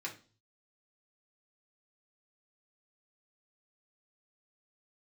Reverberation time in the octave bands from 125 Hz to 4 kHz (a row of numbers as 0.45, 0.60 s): 0.80, 0.45, 0.40, 0.35, 0.35, 0.40 s